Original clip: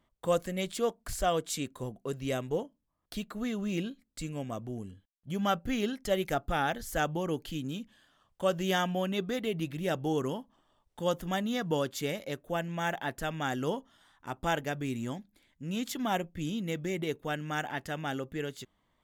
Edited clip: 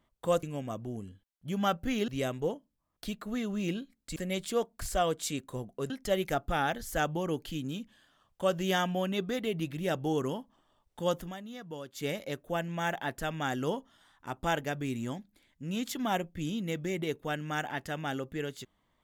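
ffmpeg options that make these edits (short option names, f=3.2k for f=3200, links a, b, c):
-filter_complex "[0:a]asplit=7[a][b][c][d][e][f][g];[a]atrim=end=0.432[h];[b]atrim=start=4.248:end=5.902[i];[c]atrim=start=2.168:end=4.252[j];[d]atrim=start=0.428:end=2.172[k];[e]atrim=start=5.898:end=11.34,asetpts=PTS-STARTPTS,afade=t=out:st=5.302:d=0.14:silence=0.251189[l];[f]atrim=start=11.34:end=11.93,asetpts=PTS-STARTPTS,volume=-12dB[m];[g]atrim=start=11.93,asetpts=PTS-STARTPTS,afade=t=in:d=0.14:silence=0.251189[n];[h][i]acrossfade=d=0.004:c1=hsin:c2=hsin[o];[o][j]acrossfade=d=0.004:c1=hsin:c2=hsin[p];[p][k]acrossfade=d=0.004:c1=hsin:c2=hsin[q];[l][m][n]concat=n=3:v=0:a=1[r];[q][r]acrossfade=d=0.004:c1=hsin:c2=hsin"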